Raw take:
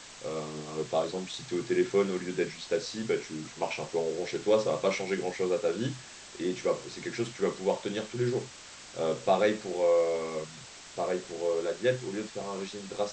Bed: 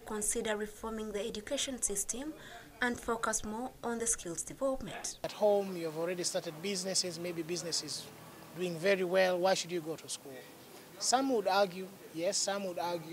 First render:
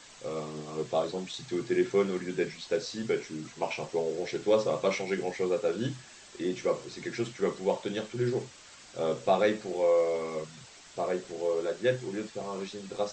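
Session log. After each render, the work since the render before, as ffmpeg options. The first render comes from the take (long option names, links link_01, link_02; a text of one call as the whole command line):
ffmpeg -i in.wav -af "afftdn=noise_reduction=6:noise_floor=-48" out.wav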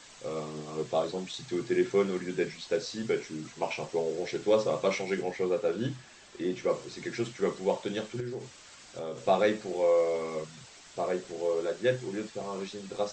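ffmpeg -i in.wav -filter_complex "[0:a]asettb=1/sr,asplit=3[link_01][link_02][link_03];[link_01]atrim=end=5.214[link_04];[link_02]atrim=start=5.21:end=6.7,asetpts=PTS-STARTPTS,afade=type=in:duration=0.004:curve=qsin,afade=type=out:start_time=1.486:duration=0.004:curve=qsin,highshelf=frequency=5100:gain=-7[link_05];[link_03]atrim=start=6.696[link_06];[link_04][link_05]acrossfade=duration=0.004:curve1=hsin:curve2=qsin[link_07];[link_07][link_06]acrossfade=duration=0.004:curve1=qsin:curve2=hsin,asettb=1/sr,asplit=3[link_08][link_09][link_10];[link_08]atrim=end=8.204[link_11];[link_09]atrim=start=8.2:end=9.18,asetpts=PTS-STARTPTS,afade=type=in:duration=0.004:curve=qsin,afade=type=out:start_time=0.976:duration=0.004:curve=qsin,acompressor=threshold=-35dB:ratio=3:attack=3.2:release=140:knee=1:detection=peak[link_12];[link_10]atrim=start=9.176[link_13];[link_11][link_12]acrossfade=duration=0.004:curve1=hsin:curve2=qsin[link_14];[link_14][link_13]acrossfade=duration=0.004:curve1=qsin:curve2=hsin" out.wav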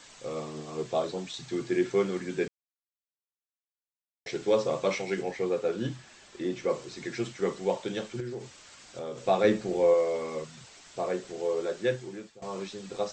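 ffmpeg -i in.wav -filter_complex "[0:a]asettb=1/sr,asplit=3[link_01][link_02][link_03];[link_01]atrim=end=9.444[link_04];[link_02]atrim=start=9.44:end=9.94,asetpts=PTS-STARTPTS,afade=type=in:duration=0.004:curve=qsin,afade=type=out:start_time=0.496:duration=0.004:curve=qsin,lowshelf=frequency=350:gain=9[link_05];[link_03]atrim=start=9.936[link_06];[link_04][link_05]acrossfade=duration=0.004:curve1=hsin:curve2=qsin[link_07];[link_07][link_06]acrossfade=duration=0.004:curve1=qsin:curve2=hsin,asplit=4[link_08][link_09][link_10][link_11];[link_08]atrim=end=2.48,asetpts=PTS-STARTPTS,afade=type=out:start_time=2.476:duration=0.004:curve=hsin[link_12];[link_09]atrim=start=2.48:end=4.26,asetpts=PTS-STARTPTS,volume=0[link_13];[link_10]atrim=start=4.26:end=12.42,asetpts=PTS-STARTPTS,afade=type=in:duration=0.004:curve=hsin,afade=type=out:start_time=7.56:duration=0.6:silence=0.125893[link_14];[link_11]atrim=start=12.42,asetpts=PTS-STARTPTS,afade=type=in:duration=0.004:curve=hsin:silence=0.125893[link_15];[link_12][link_13][link_14][link_15]concat=n=4:v=0:a=1" out.wav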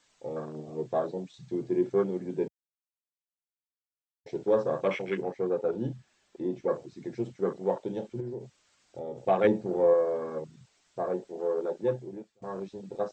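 ffmpeg -i in.wav -af "afwtdn=0.0178" out.wav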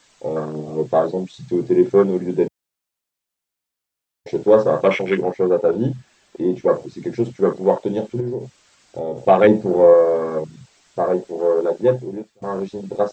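ffmpeg -i in.wav -af "volume=12dB,alimiter=limit=-2dB:level=0:latency=1" out.wav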